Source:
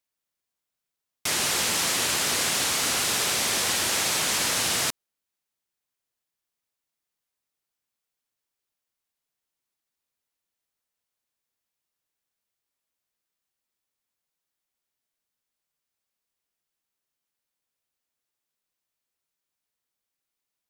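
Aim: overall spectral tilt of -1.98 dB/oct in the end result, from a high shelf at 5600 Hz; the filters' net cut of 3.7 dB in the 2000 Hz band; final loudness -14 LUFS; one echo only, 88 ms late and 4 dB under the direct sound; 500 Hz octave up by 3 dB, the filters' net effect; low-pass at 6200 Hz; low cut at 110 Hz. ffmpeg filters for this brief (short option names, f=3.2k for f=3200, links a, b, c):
-af "highpass=110,lowpass=6.2k,equalizer=f=500:t=o:g=4,equalizer=f=2k:t=o:g=-6,highshelf=f=5.6k:g=8,aecho=1:1:88:0.631,volume=7.5dB"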